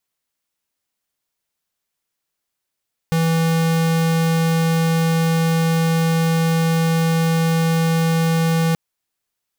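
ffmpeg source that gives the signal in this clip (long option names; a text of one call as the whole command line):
ffmpeg -f lavfi -i "aevalsrc='0.141*(2*lt(mod(164*t,1),0.5)-1)':duration=5.63:sample_rate=44100" out.wav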